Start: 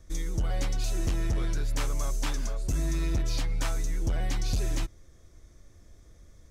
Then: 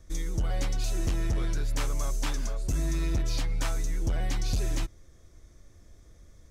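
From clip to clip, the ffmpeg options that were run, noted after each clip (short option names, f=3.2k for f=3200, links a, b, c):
-af anull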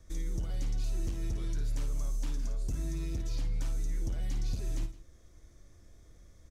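-filter_complex "[0:a]acrossover=split=430|3200[a][b][c];[a]acompressor=threshold=-29dB:ratio=4[d];[b]acompressor=threshold=-54dB:ratio=4[e];[c]acompressor=threshold=-49dB:ratio=4[f];[d][e][f]amix=inputs=3:normalize=0,asplit=2[g][h];[h]aecho=0:1:55|162:0.398|0.133[i];[g][i]amix=inputs=2:normalize=0,volume=-3.5dB"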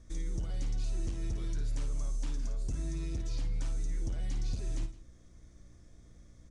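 -af "aeval=exprs='val(0)+0.00141*(sin(2*PI*60*n/s)+sin(2*PI*2*60*n/s)/2+sin(2*PI*3*60*n/s)/3+sin(2*PI*4*60*n/s)/4+sin(2*PI*5*60*n/s)/5)':c=same,aresample=22050,aresample=44100,volume=-1dB"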